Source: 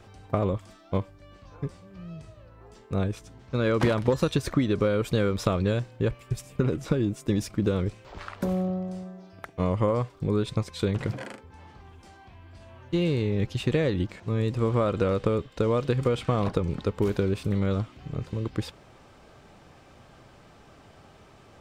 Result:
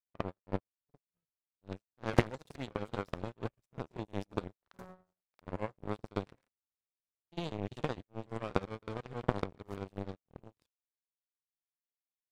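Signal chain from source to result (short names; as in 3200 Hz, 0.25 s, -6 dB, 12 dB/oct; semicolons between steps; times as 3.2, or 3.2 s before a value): on a send at -16 dB: reverb RT60 0.55 s, pre-delay 75 ms; on the sum: granular stretch 0.57×, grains 0.182 s; power-law curve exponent 3; pre-echo 51 ms -22.5 dB; gain +5.5 dB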